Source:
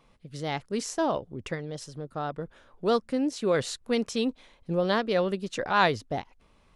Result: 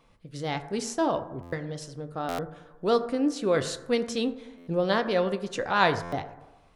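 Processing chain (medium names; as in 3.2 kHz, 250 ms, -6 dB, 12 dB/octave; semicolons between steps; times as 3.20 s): reverberation RT60 1.1 s, pre-delay 5 ms, DRR 8 dB; buffer glitch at 1.42/2.28/4.57/6.02 s, samples 512, times 8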